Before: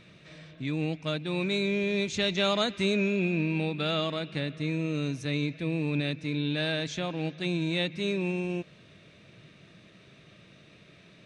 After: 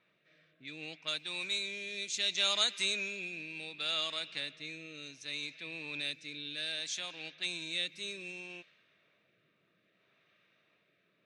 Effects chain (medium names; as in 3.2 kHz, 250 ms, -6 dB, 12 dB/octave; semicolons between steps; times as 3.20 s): differentiator; level-controlled noise filter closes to 1.1 kHz, open at -41 dBFS; rotary cabinet horn 0.65 Hz; trim +8.5 dB